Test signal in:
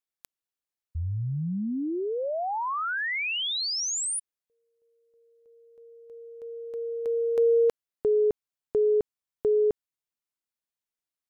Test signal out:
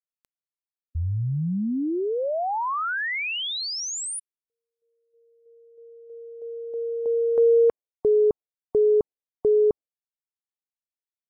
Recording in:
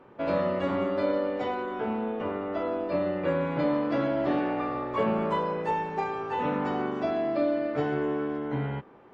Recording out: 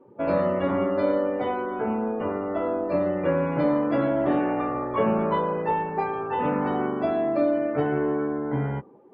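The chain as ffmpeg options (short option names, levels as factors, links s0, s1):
-af "highshelf=f=2500:g=-6,afftdn=nr=18:nf=-48,volume=1.58"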